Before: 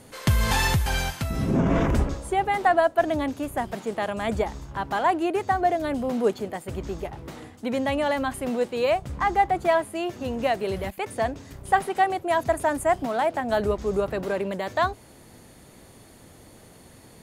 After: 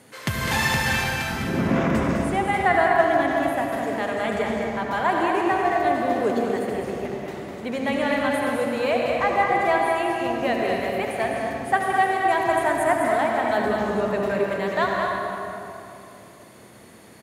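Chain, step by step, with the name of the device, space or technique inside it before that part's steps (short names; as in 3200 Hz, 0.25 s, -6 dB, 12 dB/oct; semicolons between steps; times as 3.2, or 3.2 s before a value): stadium PA (HPF 130 Hz 12 dB/oct; bell 1900 Hz +5 dB 1.2 oct; loudspeakers at several distances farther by 70 m -6 dB, 87 m -9 dB; reverb RT60 3.1 s, pre-delay 66 ms, DRR 0.5 dB); gain -2.5 dB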